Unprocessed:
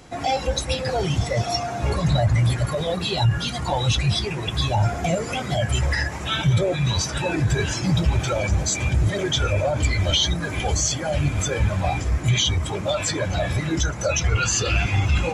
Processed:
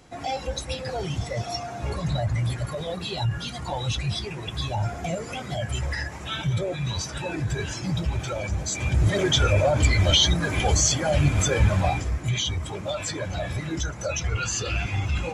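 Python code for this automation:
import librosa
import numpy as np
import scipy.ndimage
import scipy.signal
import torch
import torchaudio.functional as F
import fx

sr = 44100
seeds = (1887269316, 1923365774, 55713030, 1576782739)

y = fx.gain(x, sr, db=fx.line((8.64, -6.5), (9.16, 1.5), (11.78, 1.5), (12.19, -6.0)))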